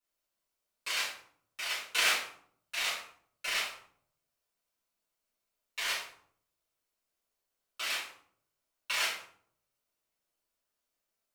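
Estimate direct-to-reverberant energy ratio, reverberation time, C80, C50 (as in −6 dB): −11.5 dB, 0.60 s, 7.5 dB, 3.5 dB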